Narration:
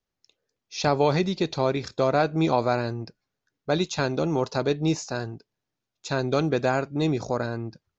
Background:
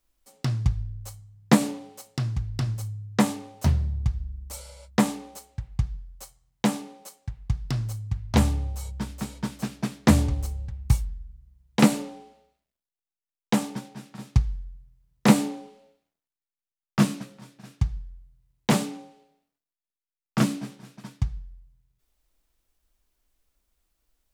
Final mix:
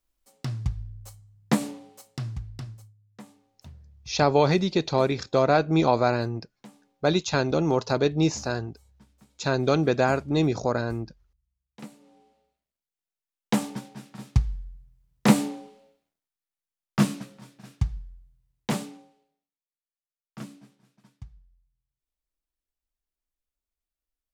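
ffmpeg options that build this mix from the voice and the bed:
-filter_complex "[0:a]adelay=3350,volume=1.19[s0];[1:a]volume=8.91,afade=t=out:st=2.29:d=0.65:silence=0.1,afade=t=in:st=12:d=1.07:silence=0.0630957,afade=t=out:st=17.75:d=1.82:silence=0.149624[s1];[s0][s1]amix=inputs=2:normalize=0"

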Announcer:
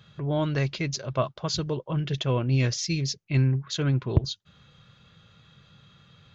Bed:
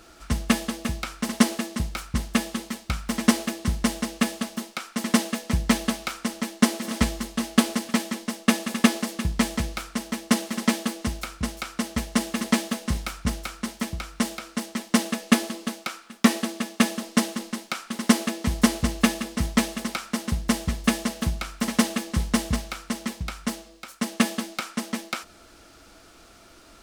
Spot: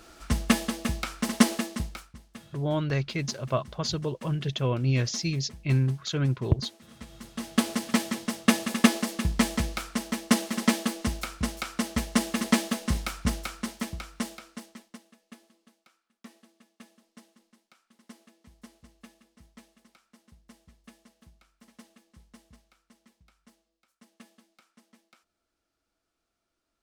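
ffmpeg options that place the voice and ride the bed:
-filter_complex "[0:a]adelay=2350,volume=0.841[s0];[1:a]volume=11.2,afade=t=out:st=1.6:d=0.56:silence=0.0794328,afade=t=in:st=7.07:d=0.88:silence=0.0794328,afade=t=out:st=13.33:d=1.66:silence=0.0316228[s1];[s0][s1]amix=inputs=2:normalize=0"

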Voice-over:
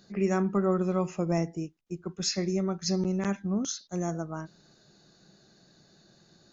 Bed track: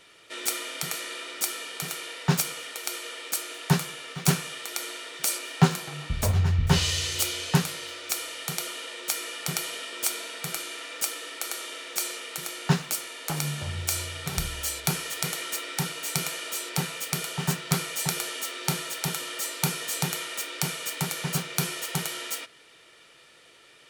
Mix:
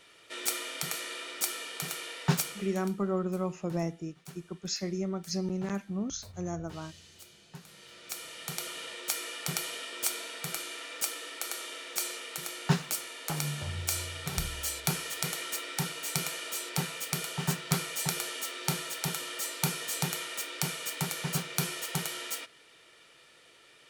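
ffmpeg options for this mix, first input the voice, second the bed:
-filter_complex "[0:a]adelay=2450,volume=0.596[s0];[1:a]volume=9.44,afade=t=out:st=2.27:d=0.68:silence=0.0707946,afade=t=in:st=7.6:d=1.23:silence=0.0749894[s1];[s0][s1]amix=inputs=2:normalize=0"

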